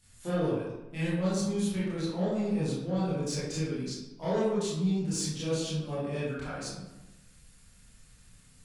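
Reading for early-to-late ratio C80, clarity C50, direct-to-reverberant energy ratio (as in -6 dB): 2.5 dB, -1.0 dB, -11.0 dB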